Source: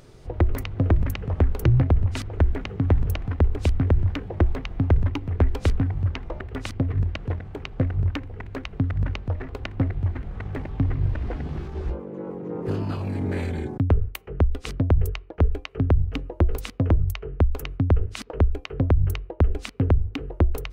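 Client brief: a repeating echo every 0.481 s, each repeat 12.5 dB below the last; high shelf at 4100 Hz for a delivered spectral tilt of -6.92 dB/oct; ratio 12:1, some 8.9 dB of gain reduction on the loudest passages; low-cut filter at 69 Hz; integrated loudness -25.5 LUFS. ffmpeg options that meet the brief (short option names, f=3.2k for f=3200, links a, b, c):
-af "highpass=69,highshelf=f=4.1k:g=-5.5,acompressor=threshold=-24dB:ratio=12,aecho=1:1:481|962|1443:0.237|0.0569|0.0137,volume=6.5dB"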